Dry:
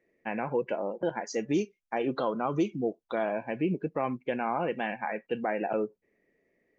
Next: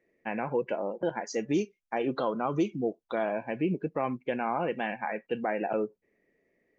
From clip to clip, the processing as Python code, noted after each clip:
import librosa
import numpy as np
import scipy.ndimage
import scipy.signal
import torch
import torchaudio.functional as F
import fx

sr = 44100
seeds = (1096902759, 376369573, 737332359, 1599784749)

y = x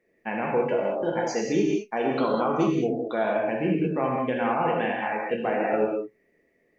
y = fx.rev_gated(x, sr, seeds[0], gate_ms=230, shape='flat', drr_db=-2.0)
y = y * librosa.db_to_amplitude(1.5)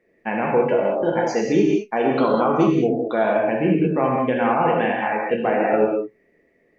y = fx.high_shelf(x, sr, hz=5200.0, db=-10.0)
y = y * librosa.db_to_amplitude(6.0)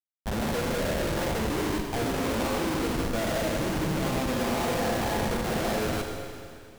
y = fx.schmitt(x, sr, flips_db=-22.0)
y = fx.rev_schroeder(y, sr, rt60_s=2.4, comb_ms=33, drr_db=3.0)
y = y * librosa.db_to_amplitude(-9.0)